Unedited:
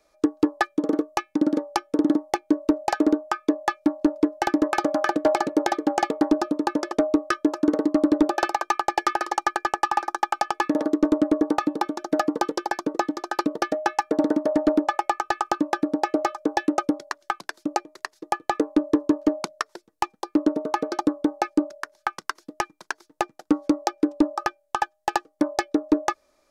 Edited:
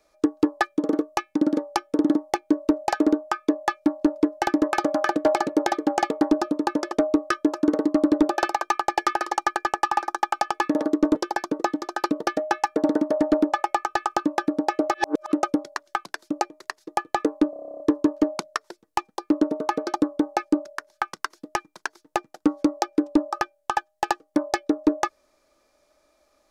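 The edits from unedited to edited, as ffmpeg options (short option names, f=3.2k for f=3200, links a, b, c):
-filter_complex "[0:a]asplit=14[a][b][c][d][e][f][g][h][i][j][k][l][m][n];[a]atrim=end=11.152[o];[b]atrim=start=12.498:end=16.292[p];[c]atrim=start=16.288:end=16.672,asetpts=PTS-STARTPTS,areverse[q];[d]atrim=start=16.668:end=18.882[r];[e]atrim=start=18.848:end=18.882[s];[f]atrim=start=18.848:end=18.882[t];[g]atrim=start=18.848:end=18.882[u];[h]atrim=start=18.848:end=18.882[v];[i]atrim=start=18.848:end=18.882[w];[j]atrim=start=18.848:end=18.882[x];[k]atrim=start=18.848:end=18.882[y];[l]atrim=start=18.848:end=18.882[z];[m]atrim=start=18.848:end=18.882[aa];[n]atrim=start=18.848[ab];[o][p]acrossfade=d=0.004:c1=hsin:c2=hsin[ac];[ac][q]acrossfade=d=0.004:c1=hsin:c2=hsin[ad];[ad][r]acrossfade=d=0.004:c1=hsin:c2=hsin[ae];[ae][s]acrossfade=d=0.004:c1=hsin:c2=hsin[af];[af][t]acrossfade=d=0.004:c1=hsin:c2=hsin[ag];[ag][u]acrossfade=d=0.004:c1=hsin:c2=hsin[ah];[ah][v]acrossfade=d=0.004:c1=hsin:c2=hsin[ai];[ai][w]acrossfade=d=0.004:c1=hsin:c2=hsin[aj];[aj][x]acrossfade=d=0.004:c1=hsin:c2=hsin[ak];[ak][y]acrossfade=d=0.004:c1=hsin:c2=hsin[al];[al][z]acrossfade=d=0.004:c1=hsin:c2=hsin[am];[am][aa]acrossfade=d=0.004:c1=hsin:c2=hsin[an];[an][ab]acrossfade=d=0.004:c1=hsin:c2=hsin"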